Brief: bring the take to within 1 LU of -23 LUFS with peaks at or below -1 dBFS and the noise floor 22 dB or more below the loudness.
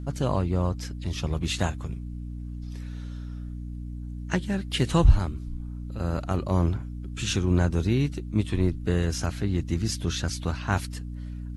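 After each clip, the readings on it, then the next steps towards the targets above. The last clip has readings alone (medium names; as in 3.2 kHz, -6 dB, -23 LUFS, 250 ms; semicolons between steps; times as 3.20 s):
hum 60 Hz; highest harmonic 300 Hz; hum level -33 dBFS; loudness -28.5 LUFS; peak level -6.0 dBFS; loudness target -23.0 LUFS
-> hum notches 60/120/180/240/300 Hz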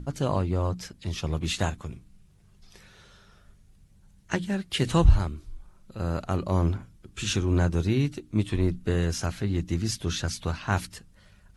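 hum not found; loudness -27.5 LUFS; peak level -7.0 dBFS; loudness target -23.0 LUFS
-> trim +4.5 dB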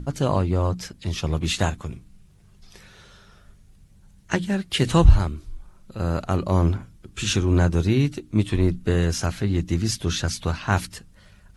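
loudness -23.0 LUFS; peak level -2.5 dBFS; noise floor -53 dBFS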